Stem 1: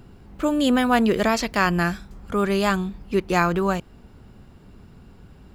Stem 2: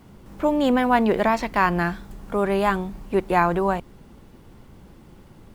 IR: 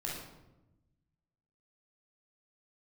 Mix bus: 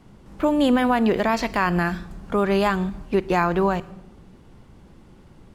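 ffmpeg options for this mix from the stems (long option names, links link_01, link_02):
-filter_complex "[0:a]volume=-5dB,asplit=2[link_01][link_02];[link_02]volume=-12dB[link_03];[1:a]lowpass=9800,volume=-2dB,asplit=2[link_04][link_05];[link_05]apad=whole_len=244718[link_06];[link_01][link_06]sidechaingate=range=-33dB:threshold=-39dB:ratio=16:detection=peak[link_07];[2:a]atrim=start_sample=2205[link_08];[link_03][link_08]afir=irnorm=-1:irlink=0[link_09];[link_07][link_04][link_09]amix=inputs=3:normalize=0,alimiter=limit=-9.5dB:level=0:latency=1:release=167"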